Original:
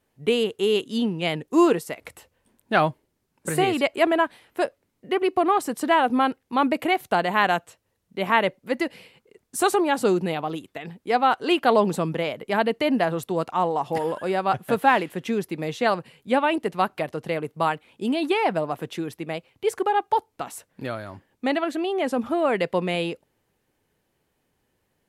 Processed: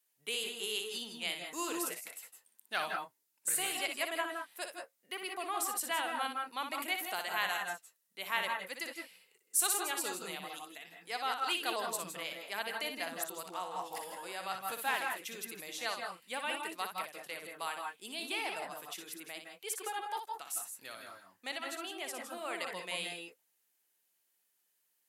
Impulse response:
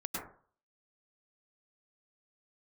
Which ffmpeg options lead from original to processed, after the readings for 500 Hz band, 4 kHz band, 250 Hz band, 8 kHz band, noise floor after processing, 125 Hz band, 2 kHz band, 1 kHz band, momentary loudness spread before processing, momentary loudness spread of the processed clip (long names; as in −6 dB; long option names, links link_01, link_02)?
−20.0 dB, −5.5 dB, −23.5 dB, +2.5 dB, −78 dBFS, −28.0 dB, −9.5 dB, −15.0 dB, 11 LU, 11 LU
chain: -filter_complex "[0:a]aderivative,asplit=2[link_01][link_02];[1:a]atrim=start_sample=2205,afade=type=out:start_time=0.19:duration=0.01,atrim=end_sample=8820,adelay=60[link_03];[link_02][link_03]afir=irnorm=-1:irlink=0,volume=-3.5dB[link_04];[link_01][link_04]amix=inputs=2:normalize=0"